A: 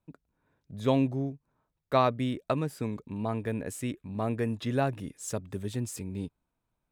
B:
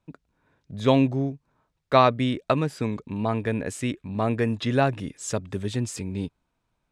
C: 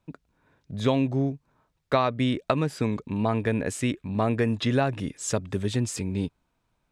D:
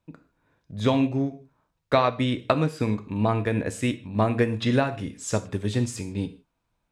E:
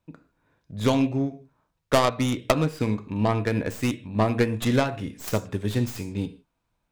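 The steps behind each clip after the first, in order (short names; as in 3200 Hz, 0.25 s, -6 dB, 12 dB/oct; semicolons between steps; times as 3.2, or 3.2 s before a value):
LPF 7900 Hz 12 dB/oct; bell 2900 Hz +3.5 dB 2.9 oct; gain +5.5 dB
compressor 6:1, threshold -21 dBFS, peak gain reduction 9 dB; gain +2 dB
non-linear reverb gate 0.18 s falling, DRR 7.5 dB; upward expander 1.5:1, over -32 dBFS; gain +3 dB
tracing distortion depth 0.38 ms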